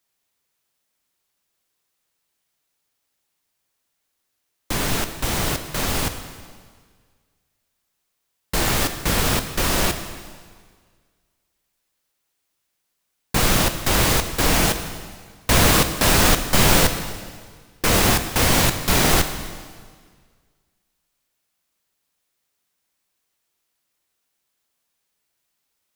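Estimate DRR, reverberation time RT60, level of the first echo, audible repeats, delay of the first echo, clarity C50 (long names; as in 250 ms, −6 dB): 8.0 dB, 1.7 s, no echo audible, no echo audible, no echo audible, 9.5 dB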